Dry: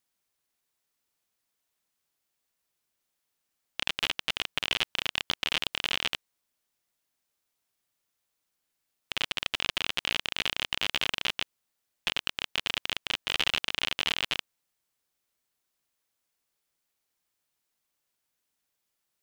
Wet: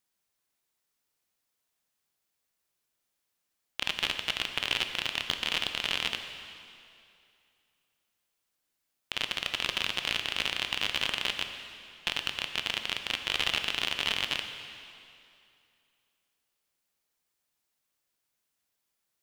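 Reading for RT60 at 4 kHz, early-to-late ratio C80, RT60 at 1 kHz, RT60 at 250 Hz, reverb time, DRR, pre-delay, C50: 2.3 s, 8.0 dB, 2.6 s, 2.5 s, 2.6 s, 6.5 dB, 7 ms, 7.5 dB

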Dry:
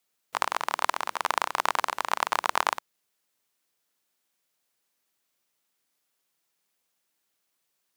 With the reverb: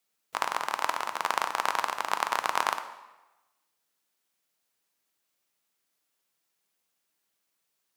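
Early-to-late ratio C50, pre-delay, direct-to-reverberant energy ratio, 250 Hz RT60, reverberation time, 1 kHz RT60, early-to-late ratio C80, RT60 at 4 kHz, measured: 11.0 dB, 3 ms, 8.0 dB, 1.0 s, 1.1 s, 1.1 s, 13.0 dB, 0.90 s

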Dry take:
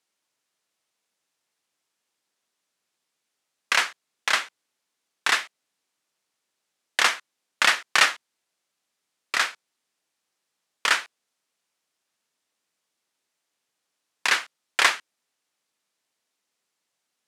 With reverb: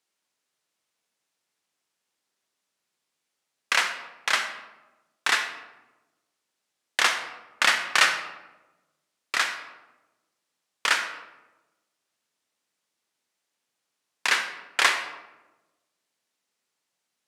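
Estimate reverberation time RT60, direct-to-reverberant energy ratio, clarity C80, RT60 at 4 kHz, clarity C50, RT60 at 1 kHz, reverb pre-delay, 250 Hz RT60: 1.1 s, 7.0 dB, 10.5 dB, 0.60 s, 8.0 dB, 1.0 s, 39 ms, 1.4 s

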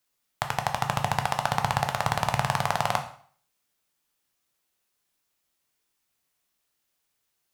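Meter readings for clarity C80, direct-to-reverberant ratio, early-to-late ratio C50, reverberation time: 14.0 dB, 5.0 dB, 10.5 dB, 0.50 s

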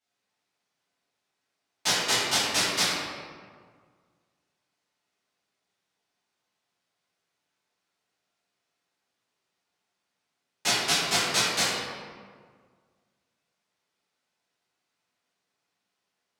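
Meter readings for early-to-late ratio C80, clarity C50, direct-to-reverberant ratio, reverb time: 0.5 dB, -1.5 dB, -11.5 dB, 1.8 s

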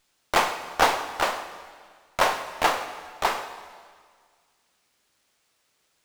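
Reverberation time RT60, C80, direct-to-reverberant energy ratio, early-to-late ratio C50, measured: 1.8 s, 11.0 dB, 8.5 dB, 10.0 dB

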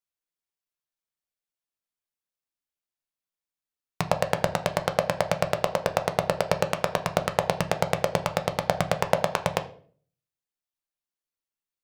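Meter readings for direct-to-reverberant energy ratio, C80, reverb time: 6.5 dB, 18.5 dB, 0.50 s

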